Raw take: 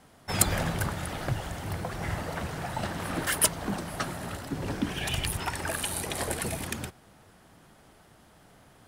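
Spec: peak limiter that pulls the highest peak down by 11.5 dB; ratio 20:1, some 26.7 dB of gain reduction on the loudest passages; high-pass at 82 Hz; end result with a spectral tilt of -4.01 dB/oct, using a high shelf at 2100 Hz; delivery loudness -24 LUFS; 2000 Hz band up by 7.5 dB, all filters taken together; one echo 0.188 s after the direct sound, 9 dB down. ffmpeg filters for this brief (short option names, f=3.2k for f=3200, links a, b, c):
-af "highpass=82,equalizer=f=2k:t=o:g=7.5,highshelf=f=2.1k:g=3.5,acompressor=threshold=-41dB:ratio=20,alimiter=level_in=13dB:limit=-24dB:level=0:latency=1,volume=-13dB,aecho=1:1:188:0.355,volume=23dB"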